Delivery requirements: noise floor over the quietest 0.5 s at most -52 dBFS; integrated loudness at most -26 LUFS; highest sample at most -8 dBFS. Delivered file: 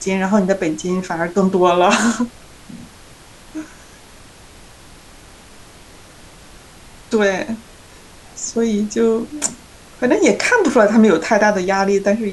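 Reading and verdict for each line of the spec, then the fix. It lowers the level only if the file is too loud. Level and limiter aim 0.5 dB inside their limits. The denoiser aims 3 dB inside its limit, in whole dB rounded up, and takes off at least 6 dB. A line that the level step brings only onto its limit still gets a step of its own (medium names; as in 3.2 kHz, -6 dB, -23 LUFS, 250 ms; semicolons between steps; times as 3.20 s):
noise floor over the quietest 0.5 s -42 dBFS: fail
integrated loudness -16.5 LUFS: fail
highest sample -2.0 dBFS: fail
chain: noise reduction 6 dB, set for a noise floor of -42 dBFS; trim -10 dB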